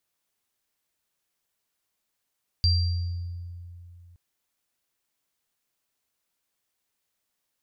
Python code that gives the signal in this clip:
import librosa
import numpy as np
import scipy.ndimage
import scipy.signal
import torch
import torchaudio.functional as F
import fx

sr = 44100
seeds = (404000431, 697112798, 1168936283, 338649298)

y = fx.additive_free(sr, length_s=1.52, hz=87.2, level_db=-18, upper_db=(-3.0,), decay_s=2.87, upper_decays_s=(0.95,), upper_hz=(4720.0,))